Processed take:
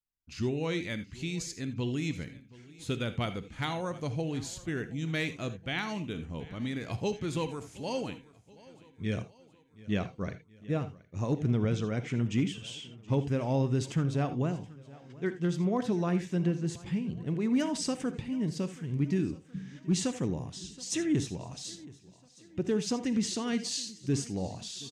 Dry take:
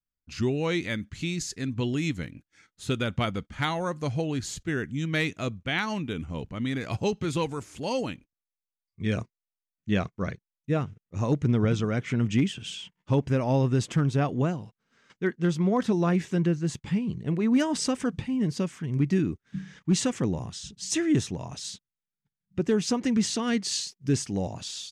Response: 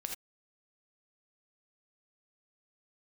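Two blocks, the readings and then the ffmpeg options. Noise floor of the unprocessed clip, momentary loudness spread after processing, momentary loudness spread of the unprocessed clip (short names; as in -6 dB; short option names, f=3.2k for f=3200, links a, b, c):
under -85 dBFS, 11 LU, 11 LU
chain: -filter_complex "[0:a]equalizer=f=1.4k:w=1.5:g=-3,aecho=1:1:724|1448|2172|2896:0.0891|0.0472|0.025|0.0133,asplit=2[a][b];[1:a]atrim=start_sample=2205[c];[b][c]afir=irnorm=-1:irlink=0,volume=-3dB[d];[a][d]amix=inputs=2:normalize=0,volume=-8.5dB"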